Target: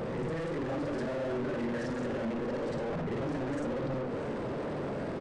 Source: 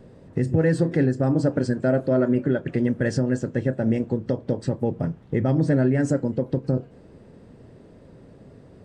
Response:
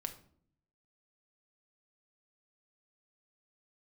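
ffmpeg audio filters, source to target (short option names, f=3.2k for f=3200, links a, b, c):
-filter_complex "[0:a]afftfilt=real='re':imag='-im':win_size=8192:overlap=0.75,bandreject=f=249.4:t=h:w=4,bandreject=f=498.8:t=h:w=4,bandreject=f=748.2:t=h:w=4,bandreject=f=997.6:t=h:w=4,bandreject=f=1.247k:t=h:w=4,bandreject=f=1.4964k:t=h:w=4,bandreject=f=1.7458k:t=h:w=4,bandreject=f=1.9952k:t=h:w=4,bandreject=f=2.2446k:t=h:w=4,bandreject=f=2.494k:t=h:w=4,bandreject=f=2.7434k:t=h:w=4,bandreject=f=2.9928k:t=h:w=4,bandreject=f=3.2422k:t=h:w=4,bandreject=f=3.4916k:t=h:w=4,acompressor=threshold=-38dB:ratio=10,atempo=1.7,asplit=2[a][b];[b]highpass=f=720:p=1,volume=39dB,asoftclip=type=tanh:threshold=-31.5dB[c];[a][c]amix=inputs=2:normalize=0,lowpass=f=1.1k:p=1,volume=-6dB,asplit=2[d][e];[e]adelay=21,volume=-11.5dB[f];[d][f]amix=inputs=2:normalize=0,asplit=2[g][h];[h]aecho=0:1:634:0.211[i];[g][i]amix=inputs=2:normalize=0,aresample=22050,aresample=44100,volume=4dB"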